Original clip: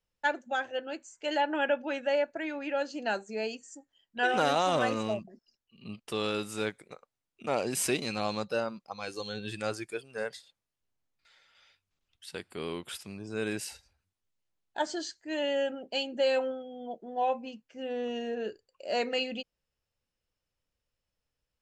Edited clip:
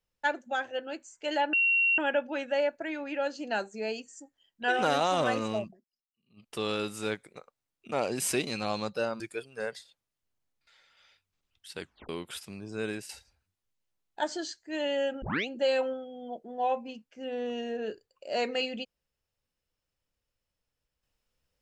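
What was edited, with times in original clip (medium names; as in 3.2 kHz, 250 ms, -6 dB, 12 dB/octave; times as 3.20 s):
1.53 s: add tone 2.74 kHz -21.5 dBFS 0.45 s
5.23–6.04 s: dip -22 dB, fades 0.13 s
8.75–9.78 s: delete
12.39 s: tape stop 0.28 s
13.31–13.67 s: fade out equal-power, to -10 dB
15.80 s: tape start 0.26 s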